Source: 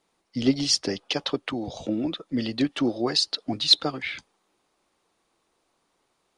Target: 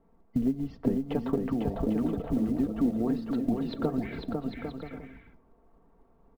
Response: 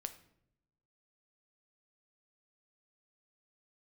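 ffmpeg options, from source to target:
-filter_complex "[0:a]lowpass=1.1k,aemphasis=mode=reproduction:type=riaa,aecho=1:1:4.4:0.53,acompressor=threshold=-30dB:ratio=5,acrusher=bits=8:mode=log:mix=0:aa=0.000001,aecho=1:1:500|800|980|1088|1153:0.631|0.398|0.251|0.158|0.1,asplit=2[a][b];[1:a]atrim=start_sample=2205,lowpass=5k[c];[b][c]afir=irnorm=-1:irlink=0,volume=-4dB[d];[a][d]amix=inputs=2:normalize=0"

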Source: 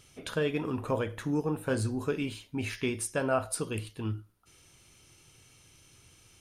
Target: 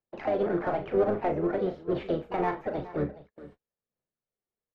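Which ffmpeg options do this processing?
-filter_complex "[0:a]acrossover=split=330[a][b];[b]acompressor=threshold=-34dB:ratio=2[c];[a][c]amix=inputs=2:normalize=0,asetrate=59535,aresample=44100,aphaser=in_gain=1:out_gain=1:delay=2.8:decay=0.38:speed=1:type=sinusoidal,acrossover=split=5000[d][e];[e]acompressor=threshold=-57dB:ratio=4:attack=1:release=60[f];[d][f]amix=inputs=2:normalize=0,acrossover=split=290 2000:gain=0.0708 1 0.0794[g][h][i];[g][h][i]amix=inputs=3:normalize=0,asplit=2[j][k];[k]asoftclip=type=hard:threshold=-35dB,volume=-4dB[l];[j][l]amix=inputs=2:normalize=0,aecho=1:1:419:0.15,asplit=3[m][n][o];[n]asetrate=22050,aresample=44100,atempo=2,volume=-13dB[p];[o]asetrate=55563,aresample=44100,atempo=0.793701,volume=-7dB[q];[m][p][q]amix=inputs=3:normalize=0,asplit=2[r][s];[s]adelay=38,volume=-8.5dB[t];[r][t]amix=inputs=2:normalize=0,agate=range=-36dB:threshold=-53dB:ratio=16:detection=peak,aemphasis=mode=reproduction:type=bsi"

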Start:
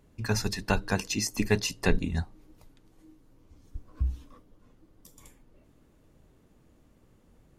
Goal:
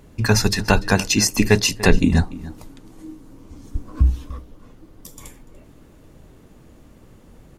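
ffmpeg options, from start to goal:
-filter_complex "[0:a]asettb=1/sr,asplit=3[a][b][c];[a]atrim=end=2.024[d];[b]atrim=start=2.02:end=4.1,asetpts=PTS-STARTPTS,afade=t=in:d=0.004:c=qsin,afade=t=out:st=2.076:d=0.004:c=qsin,equalizer=f=250:t=o:w=1:g=7,equalizer=f=1k:t=o:w=1:g=3,equalizer=f=8k:t=o:w=1:g=4[e];[c]atrim=start=4.096[f];[d][e]acrossfade=d=0.004:c1=hsin:c2=qsin[g];[g][f]acrossfade=d=0.004:c1=qsin:c2=hsin,asplit=2[h][i];[i]alimiter=limit=-20.5dB:level=0:latency=1:release=219,volume=1.5dB[j];[h][j]amix=inputs=2:normalize=0,asplit=2[k][l];[l]adelay=291.5,volume=-18dB,highshelf=f=4k:g=-6.56[m];[k][m]amix=inputs=2:normalize=0,volume=6.5dB"

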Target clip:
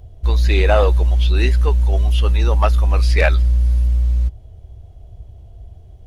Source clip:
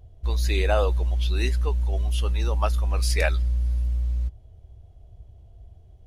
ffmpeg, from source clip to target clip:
-filter_complex "[0:a]acrossover=split=4100[a][b];[b]acompressor=threshold=-50dB:ratio=4:attack=1:release=60[c];[a][c]amix=inputs=2:normalize=0,asplit=2[d][e];[e]asoftclip=type=hard:threshold=-19dB,volume=-3.5dB[f];[d][f]amix=inputs=2:normalize=0,volume=4.5dB"

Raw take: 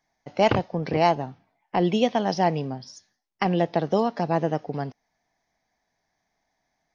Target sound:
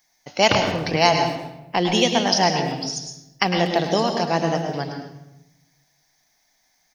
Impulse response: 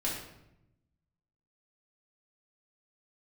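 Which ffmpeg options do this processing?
-filter_complex "[0:a]asplit=2[a][b];[b]adelay=240,highpass=300,lowpass=3.4k,asoftclip=type=hard:threshold=-16dB,volume=-22dB[c];[a][c]amix=inputs=2:normalize=0,asplit=2[d][e];[1:a]atrim=start_sample=2205,adelay=104[f];[e][f]afir=irnorm=-1:irlink=0,volume=-9.5dB[g];[d][g]amix=inputs=2:normalize=0,crystalizer=i=8.5:c=0,volume=-1dB"

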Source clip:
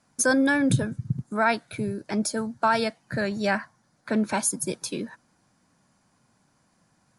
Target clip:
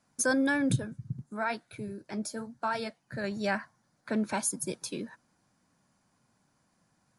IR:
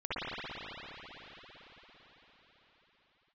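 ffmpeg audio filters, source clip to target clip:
-filter_complex "[0:a]asettb=1/sr,asplit=3[a][b][c];[a]atrim=end=0.764[d];[b]atrim=start=0.76:end=3.24,asetpts=PTS-STARTPTS,afade=t=in:d=0.004:c=qsin,afade=t=out:st=2.476:d=0.004:c=qsin,flanger=delay=1.8:depth=8.5:regen=-62:speed=1:shape=triangular[e];[c]atrim=start=3.236[f];[d][e]acrossfade=d=0.004:c1=hsin:c2=qsin[g];[g][f]acrossfade=d=0.004:c1=qsin:c2=hsin,volume=-5.5dB"

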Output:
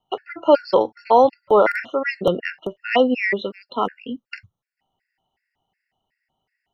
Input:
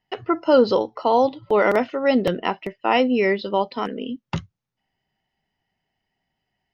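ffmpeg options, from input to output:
-filter_complex "[0:a]acrossover=split=440|2400[a][b][c];[b]acontrast=66[d];[a][d][c]amix=inputs=3:normalize=0,afftfilt=real='re*gt(sin(2*PI*2.7*pts/sr)*(1-2*mod(floor(b*sr/1024/1400),2)),0)':imag='im*gt(sin(2*PI*2.7*pts/sr)*(1-2*mod(floor(b*sr/1024/1400),2)),0)':win_size=1024:overlap=0.75"

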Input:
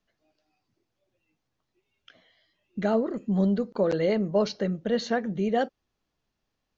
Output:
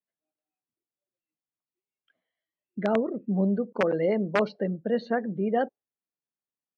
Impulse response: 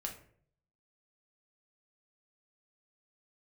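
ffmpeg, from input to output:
-af "afftdn=nr=20:nf=-38,aeval=exprs='(mod(5.01*val(0)+1,2)-1)/5.01':c=same,highpass=150,lowpass=2.4k"

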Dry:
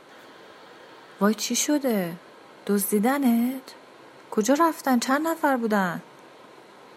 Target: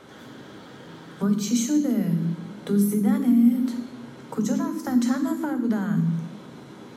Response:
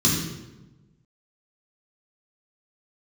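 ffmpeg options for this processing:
-filter_complex "[0:a]acompressor=threshold=-30dB:ratio=6,asplit=2[a][b];[1:a]atrim=start_sample=2205,lowshelf=f=290:g=11.5,highshelf=f=5.5k:g=9[c];[b][c]afir=irnorm=-1:irlink=0,volume=-21.5dB[d];[a][d]amix=inputs=2:normalize=0"

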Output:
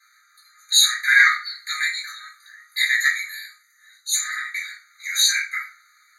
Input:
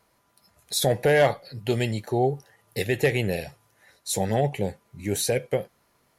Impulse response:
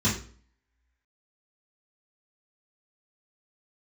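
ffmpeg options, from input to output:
-filter_complex "[0:a]asplit=3[a][b][c];[a]afade=t=out:st=3.05:d=0.02[d];[b]equalizer=f=1.9k:t=o:w=2.9:g=-11,afade=t=in:st=3.05:d=0.02,afade=t=out:st=4.12:d=0.02[e];[c]afade=t=in:st=4.12:d=0.02[f];[d][e][f]amix=inputs=3:normalize=0,acontrast=50[g];[1:a]atrim=start_sample=2205,asetrate=48510,aresample=44100[h];[g][h]afir=irnorm=-1:irlink=0,afftfilt=real='re*eq(mod(floor(b*sr/1024/1200),2),1)':imag='im*eq(mod(floor(b*sr/1024/1200),2),1)':win_size=1024:overlap=0.75,volume=-1dB"

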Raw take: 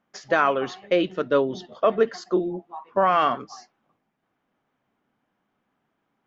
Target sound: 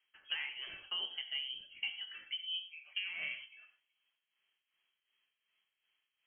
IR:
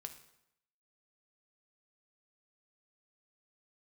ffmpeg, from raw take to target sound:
-filter_complex "[0:a]tremolo=f=2.7:d=0.69,acompressor=threshold=-32dB:ratio=6[a];[1:a]atrim=start_sample=2205,atrim=end_sample=4410,asetrate=31311,aresample=44100[b];[a][b]afir=irnorm=-1:irlink=0,lowpass=f=2.9k:t=q:w=0.5098,lowpass=f=2.9k:t=q:w=0.6013,lowpass=f=2.9k:t=q:w=0.9,lowpass=f=2.9k:t=q:w=2.563,afreqshift=-3400,volume=-2.5dB"

